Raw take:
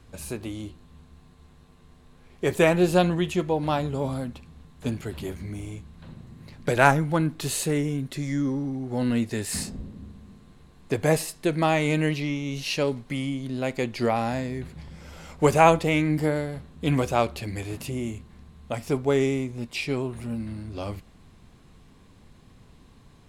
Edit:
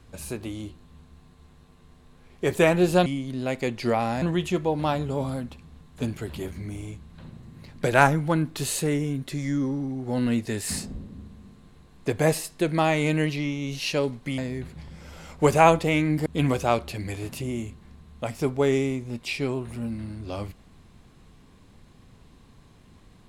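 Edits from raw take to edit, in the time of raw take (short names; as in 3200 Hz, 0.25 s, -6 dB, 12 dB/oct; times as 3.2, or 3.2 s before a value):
13.22–14.38 move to 3.06
16.26–16.74 cut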